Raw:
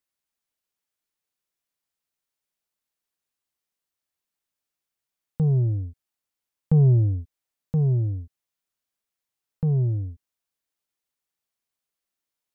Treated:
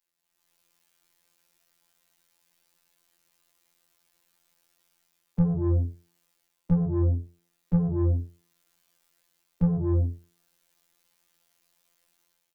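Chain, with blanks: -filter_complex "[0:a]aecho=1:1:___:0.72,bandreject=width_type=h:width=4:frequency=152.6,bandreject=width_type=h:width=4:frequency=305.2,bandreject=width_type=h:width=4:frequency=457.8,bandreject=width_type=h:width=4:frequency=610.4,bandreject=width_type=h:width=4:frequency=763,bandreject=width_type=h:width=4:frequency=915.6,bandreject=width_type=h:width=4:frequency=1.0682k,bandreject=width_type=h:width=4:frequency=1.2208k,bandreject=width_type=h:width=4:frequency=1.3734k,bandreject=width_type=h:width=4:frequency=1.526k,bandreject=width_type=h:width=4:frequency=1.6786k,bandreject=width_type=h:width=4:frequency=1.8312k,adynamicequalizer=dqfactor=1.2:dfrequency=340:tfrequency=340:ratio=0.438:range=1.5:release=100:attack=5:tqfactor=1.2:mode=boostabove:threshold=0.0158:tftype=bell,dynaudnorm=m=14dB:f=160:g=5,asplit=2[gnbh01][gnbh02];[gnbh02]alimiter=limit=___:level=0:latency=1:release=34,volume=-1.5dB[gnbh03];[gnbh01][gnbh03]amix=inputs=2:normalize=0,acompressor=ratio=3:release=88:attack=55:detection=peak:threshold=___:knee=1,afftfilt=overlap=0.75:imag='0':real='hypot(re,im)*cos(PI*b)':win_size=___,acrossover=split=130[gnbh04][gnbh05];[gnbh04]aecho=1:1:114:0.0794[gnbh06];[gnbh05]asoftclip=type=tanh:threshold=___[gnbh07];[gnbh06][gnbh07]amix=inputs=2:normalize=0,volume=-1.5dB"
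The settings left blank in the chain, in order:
5.8, -10dB, -15dB, 2048, -22dB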